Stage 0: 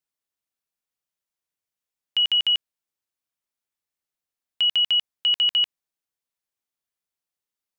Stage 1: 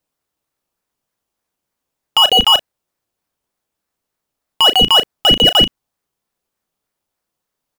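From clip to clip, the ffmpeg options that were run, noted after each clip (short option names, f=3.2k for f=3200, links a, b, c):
-filter_complex "[0:a]asplit=2[a][b];[b]acrusher=samples=17:mix=1:aa=0.000001:lfo=1:lforange=10.2:lforate=3.3,volume=-4dB[c];[a][c]amix=inputs=2:normalize=0,asplit=2[d][e];[e]adelay=36,volume=-11.5dB[f];[d][f]amix=inputs=2:normalize=0,volume=7.5dB"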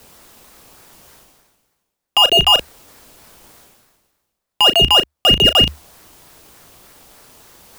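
-af "areverse,acompressor=mode=upward:threshold=-18dB:ratio=2.5,areverse,afreqshift=-75,volume=-1dB"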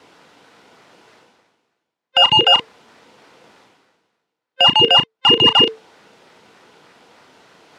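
-af "afftfilt=real='real(if(between(b,1,1008),(2*floor((b-1)/24)+1)*24-b,b),0)':imag='imag(if(between(b,1,1008),(2*floor((b-1)/24)+1)*24-b,b),0)*if(between(b,1,1008),-1,1)':win_size=2048:overlap=0.75,highpass=170,lowpass=3.6k,volume=1dB"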